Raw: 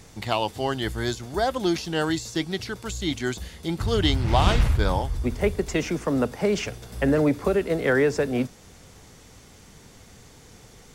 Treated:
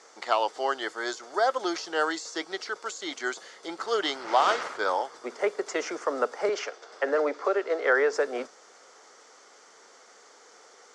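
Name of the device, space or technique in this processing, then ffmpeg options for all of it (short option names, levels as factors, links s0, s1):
phone speaker on a table: -filter_complex "[0:a]highpass=f=420:w=0.5412,highpass=f=420:w=1.3066,equalizer=f=1300:t=q:w=4:g=7,equalizer=f=2600:t=q:w=4:g=-8,equalizer=f=3700:t=q:w=4:g=-6,lowpass=f=7100:w=0.5412,lowpass=f=7100:w=1.3066,asettb=1/sr,asplit=3[s0][s1][s2];[s0]atrim=end=6.494[s3];[s1]atrim=start=6.49:end=8.13,asetpts=PTS-STARTPTS,afade=t=in:d=0.004:c=qsin,afade=t=out:st=1.636:d=0.004:c=qsin,acrossover=split=230 7300:gain=0.0631 1 0.0631[s4][s5][s6];[s4][s5][s6]amix=inputs=3:normalize=0[s7];[s2]atrim=start=8.126[s8];[s3][s7]acrossfade=d=0.004:c1=hsin:c2=qsin[s9];[s9][s8]acrossfade=d=0.004:c1=qsin:c2=hsin"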